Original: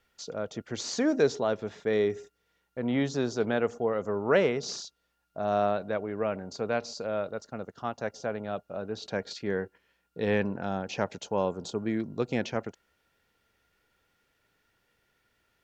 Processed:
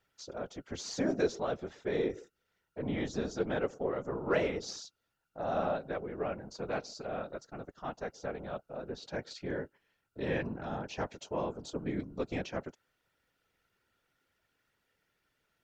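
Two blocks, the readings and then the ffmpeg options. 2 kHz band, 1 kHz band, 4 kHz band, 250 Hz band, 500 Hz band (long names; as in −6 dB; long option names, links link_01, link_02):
−6.0 dB, −5.5 dB, −6.0 dB, −6.0 dB, −6.5 dB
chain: -af "aeval=exprs='0.282*(cos(1*acos(clip(val(0)/0.282,-1,1)))-cos(1*PI/2))+0.00282*(cos(8*acos(clip(val(0)/0.282,-1,1)))-cos(8*PI/2))':channel_layout=same,afftfilt=real='hypot(re,im)*cos(2*PI*random(0))':imag='hypot(re,im)*sin(2*PI*random(1))':win_size=512:overlap=0.75"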